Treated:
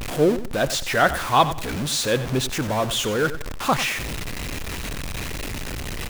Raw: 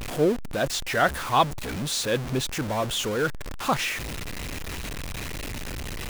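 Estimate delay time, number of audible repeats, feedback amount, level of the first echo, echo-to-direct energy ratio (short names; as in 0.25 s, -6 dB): 94 ms, 2, 25%, -13.0 dB, -12.5 dB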